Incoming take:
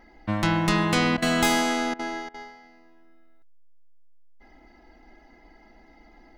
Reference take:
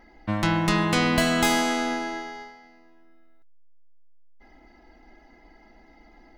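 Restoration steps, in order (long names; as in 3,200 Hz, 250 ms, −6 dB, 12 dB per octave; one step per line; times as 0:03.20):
repair the gap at 0:01.17/0:01.94/0:02.29, 51 ms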